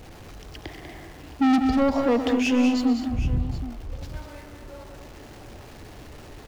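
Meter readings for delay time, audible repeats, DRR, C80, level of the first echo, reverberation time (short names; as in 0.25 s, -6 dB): 0.125 s, 4, none, none, -12.5 dB, none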